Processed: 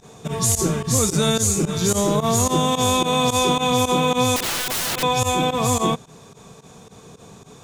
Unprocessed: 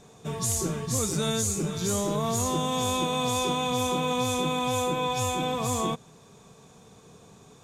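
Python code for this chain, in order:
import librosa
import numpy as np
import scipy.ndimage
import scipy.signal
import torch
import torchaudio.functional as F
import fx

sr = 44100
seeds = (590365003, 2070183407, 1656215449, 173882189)

y = fx.volume_shaper(x, sr, bpm=109, per_beat=2, depth_db=-19, release_ms=70.0, shape='fast start')
y = fx.overflow_wrap(y, sr, gain_db=27.5, at=(4.36, 5.03))
y = y * librosa.db_to_amplitude(8.5)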